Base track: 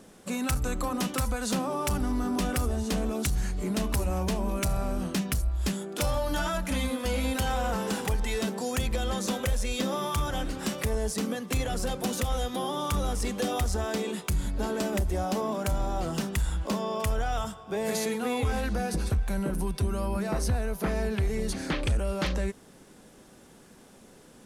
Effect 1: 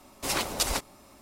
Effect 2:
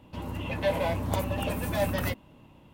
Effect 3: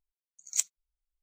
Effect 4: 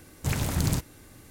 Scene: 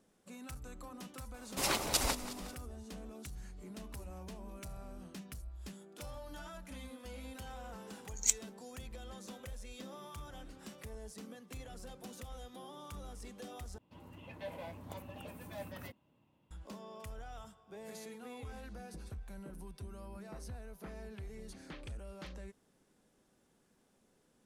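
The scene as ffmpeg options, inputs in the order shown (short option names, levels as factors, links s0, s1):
-filter_complex "[0:a]volume=0.112[s0];[1:a]asplit=6[s1][s2][s3][s4][s5][s6];[s2]adelay=181,afreqshift=-40,volume=0.211[s7];[s3]adelay=362,afreqshift=-80,volume=0.114[s8];[s4]adelay=543,afreqshift=-120,volume=0.0617[s9];[s5]adelay=724,afreqshift=-160,volume=0.0331[s10];[s6]adelay=905,afreqshift=-200,volume=0.018[s11];[s1][s7][s8][s9][s10][s11]amix=inputs=6:normalize=0[s12];[2:a]highpass=85[s13];[s0]asplit=2[s14][s15];[s14]atrim=end=13.784[s16];[s13]atrim=end=2.73,asetpts=PTS-STARTPTS,volume=0.133[s17];[s15]atrim=start=16.506[s18];[s12]atrim=end=1.21,asetpts=PTS-STARTPTS,volume=0.631,afade=t=in:d=0.004:c=hsin,afade=t=out:st=1.206:d=0.004:c=hsin,adelay=1340[s19];[3:a]atrim=end=1.22,asetpts=PTS-STARTPTS,volume=0.891,afade=t=in:d=0.004:c=hsin,afade=t=out:st=1.216:d=0.004:c=hsin,adelay=339570S[s20];[s16][s17]acrossfade=d=0.004:c1=hsin:c2=hsin[s21];[s21][s18]acrossfade=d=0.004:c1=hsin:c2=hsin[s22];[s22][s19][s20]amix=inputs=3:normalize=0"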